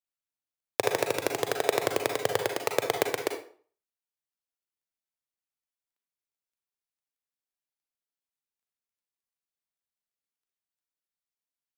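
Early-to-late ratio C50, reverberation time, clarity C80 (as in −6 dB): 6.5 dB, 0.45 s, 12.0 dB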